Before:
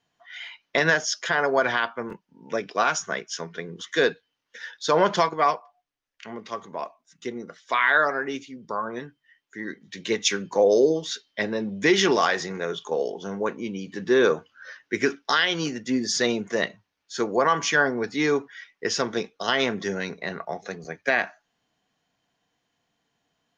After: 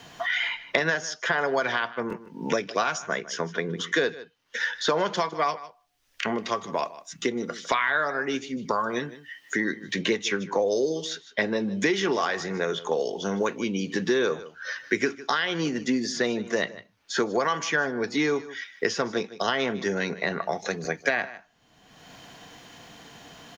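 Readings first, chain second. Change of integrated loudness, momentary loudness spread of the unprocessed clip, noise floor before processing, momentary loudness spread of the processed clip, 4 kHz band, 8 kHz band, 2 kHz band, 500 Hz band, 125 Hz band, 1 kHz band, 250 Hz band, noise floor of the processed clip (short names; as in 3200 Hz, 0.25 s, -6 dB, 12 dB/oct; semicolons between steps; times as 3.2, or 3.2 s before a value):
-3.0 dB, 16 LU, -78 dBFS, 11 LU, -2.5 dB, -4.0 dB, -1.5 dB, -2.5 dB, 0.0 dB, -2.5 dB, -0.5 dB, -61 dBFS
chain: on a send: echo 0.153 s -20 dB; on the sum: three-band squash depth 100%; gain -2.5 dB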